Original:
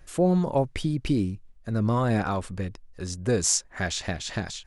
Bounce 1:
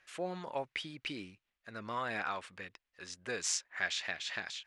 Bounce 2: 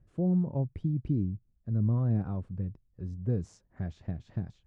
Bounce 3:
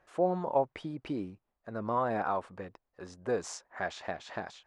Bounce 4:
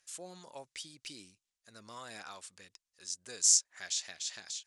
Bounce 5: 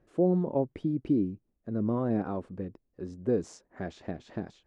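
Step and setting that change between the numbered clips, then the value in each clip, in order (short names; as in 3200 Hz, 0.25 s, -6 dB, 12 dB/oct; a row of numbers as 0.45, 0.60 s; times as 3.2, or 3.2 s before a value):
band-pass, frequency: 2300, 120, 840, 6700, 320 Hz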